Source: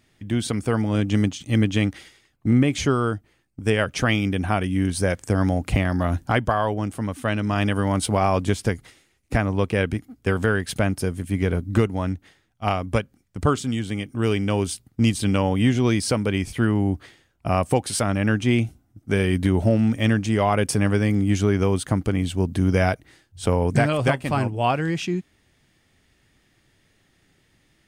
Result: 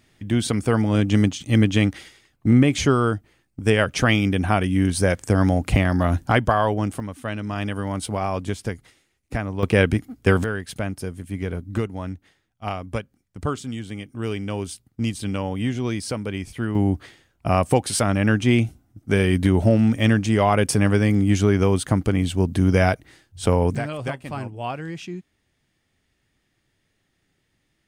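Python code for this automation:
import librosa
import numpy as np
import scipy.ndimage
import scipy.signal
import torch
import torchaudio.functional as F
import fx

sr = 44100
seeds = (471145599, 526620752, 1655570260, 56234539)

y = fx.gain(x, sr, db=fx.steps((0.0, 2.5), (7.0, -5.0), (9.63, 5.0), (10.44, -5.5), (16.75, 2.0), (23.75, -8.0)))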